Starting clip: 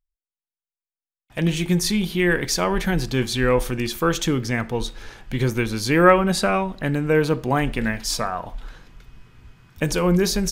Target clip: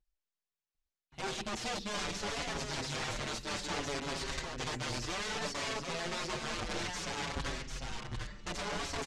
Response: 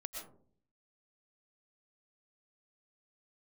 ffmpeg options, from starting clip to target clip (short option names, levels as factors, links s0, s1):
-filter_complex "[0:a]areverse,acompressor=threshold=0.02:ratio=5,areverse,aeval=exprs='(mod(42.2*val(0)+1,2)-1)/42.2':c=same,lowpass=f=6300:w=0.5412,lowpass=f=6300:w=1.3066,asetrate=51156,aresample=44100,asplit=2[s0][s1];[s1]aecho=0:1:748:0.562[s2];[s0][s2]amix=inputs=2:normalize=0,asplit=2[s3][s4];[s4]adelay=6.1,afreqshift=-0.61[s5];[s3][s5]amix=inputs=2:normalize=1,volume=1.5"